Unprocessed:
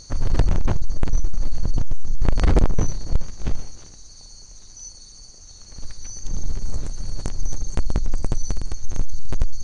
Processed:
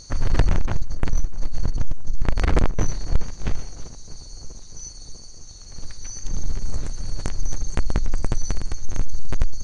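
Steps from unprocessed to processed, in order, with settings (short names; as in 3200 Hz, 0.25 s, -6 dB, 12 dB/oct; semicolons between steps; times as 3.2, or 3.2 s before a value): 0.64–2.86 half-wave gain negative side -7 dB; dynamic EQ 1900 Hz, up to +6 dB, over -50 dBFS, Q 0.85; darkening echo 0.645 s, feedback 72%, low-pass 1400 Hz, level -19 dB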